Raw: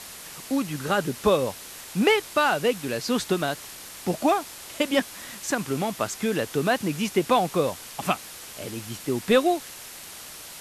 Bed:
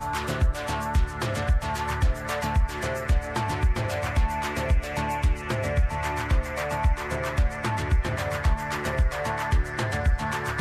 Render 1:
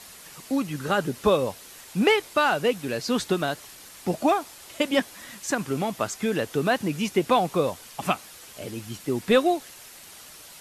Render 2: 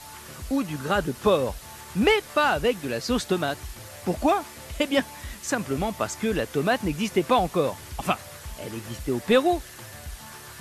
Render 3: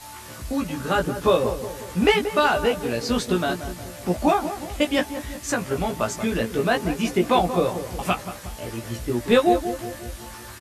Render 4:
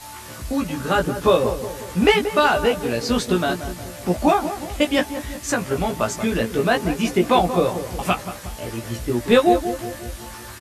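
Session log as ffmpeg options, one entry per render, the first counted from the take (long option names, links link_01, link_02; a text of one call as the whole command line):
ffmpeg -i in.wav -af "afftdn=noise_reduction=6:noise_floor=-42" out.wav
ffmpeg -i in.wav -i bed.wav -filter_complex "[1:a]volume=-16.5dB[link_01];[0:a][link_01]amix=inputs=2:normalize=0" out.wav
ffmpeg -i in.wav -filter_complex "[0:a]asplit=2[link_01][link_02];[link_02]adelay=17,volume=-3dB[link_03];[link_01][link_03]amix=inputs=2:normalize=0,asplit=2[link_04][link_05];[link_05]adelay=181,lowpass=frequency=990:poles=1,volume=-9dB,asplit=2[link_06][link_07];[link_07]adelay=181,lowpass=frequency=990:poles=1,volume=0.54,asplit=2[link_08][link_09];[link_09]adelay=181,lowpass=frequency=990:poles=1,volume=0.54,asplit=2[link_10][link_11];[link_11]adelay=181,lowpass=frequency=990:poles=1,volume=0.54,asplit=2[link_12][link_13];[link_13]adelay=181,lowpass=frequency=990:poles=1,volume=0.54,asplit=2[link_14][link_15];[link_15]adelay=181,lowpass=frequency=990:poles=1,volume=0.54[link_16];[link_04][link_06][link_08][link_10][link_12][link_14][link_16]amix=inputs=7:normalize=0" out.wav
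ffmpeg -i in.wav -af "volume=2.5dB" out.wav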